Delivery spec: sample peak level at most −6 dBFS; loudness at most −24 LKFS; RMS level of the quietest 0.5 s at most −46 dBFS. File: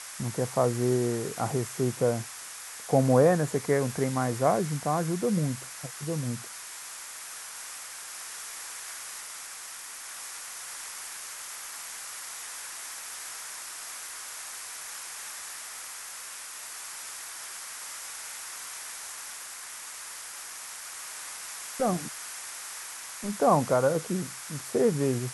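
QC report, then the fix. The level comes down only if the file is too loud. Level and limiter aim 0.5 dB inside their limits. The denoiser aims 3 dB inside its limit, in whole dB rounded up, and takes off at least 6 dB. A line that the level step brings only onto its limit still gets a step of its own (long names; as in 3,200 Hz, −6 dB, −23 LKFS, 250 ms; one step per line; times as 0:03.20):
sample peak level −9.5 dBFS: in spec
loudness −31.5 LKFS: in spec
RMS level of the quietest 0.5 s −42 dBFS: out of spec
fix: broadband denoise 7 dB, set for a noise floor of −42 dBFS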